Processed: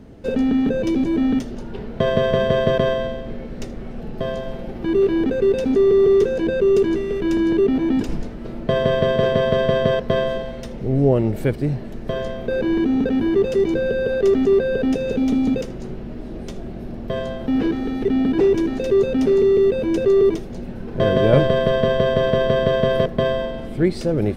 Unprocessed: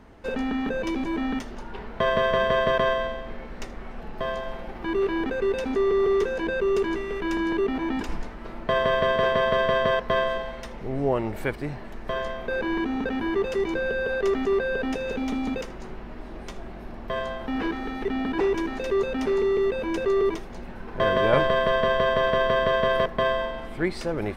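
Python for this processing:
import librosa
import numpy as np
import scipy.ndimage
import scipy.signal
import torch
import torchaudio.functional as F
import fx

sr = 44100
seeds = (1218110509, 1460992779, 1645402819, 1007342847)

y = fx.graphic_eq(x, sr, hz=(125, 250, 500, 1000, 2000), db=(9, 4, 4, -9, -5))
y = y * librosa.db_to_amplitude(4.0)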